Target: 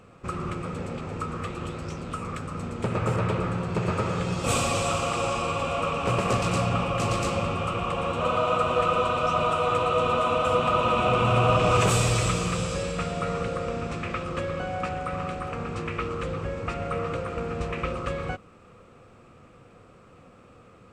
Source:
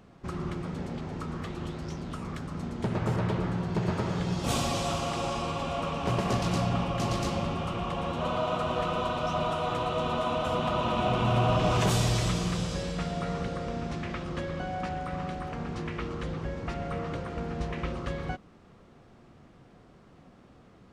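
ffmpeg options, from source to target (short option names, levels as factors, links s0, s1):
-af "equalizer=f=100:t=o:w=0.33:g=7,equalizer=f=500:t=o:w=0.33:g=10,equalizer=f=1250:t=o:w=0.33:g=11,equalizer=f=2500:t=o:w=0.33:g=10,equalizer=f=8000:t=o:w=0.33:g=11"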